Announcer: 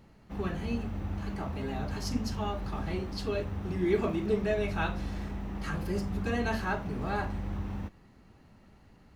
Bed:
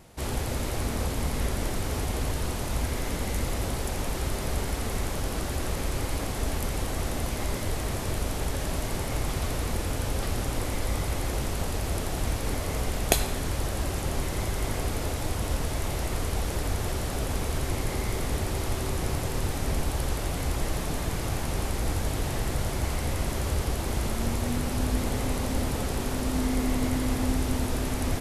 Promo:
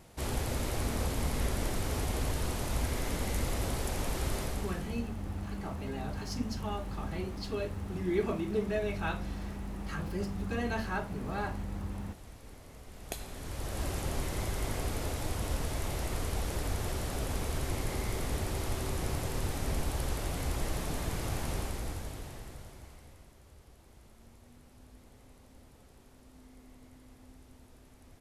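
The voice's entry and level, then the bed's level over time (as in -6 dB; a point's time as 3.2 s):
4.25 s, -3.0 dB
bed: 4.4 s -3.5 dB
5.09 s -22 dB
12.84 s -22 dB
13.84 s -5 dB
21.52 s -5 dB
23.36 s -29 dB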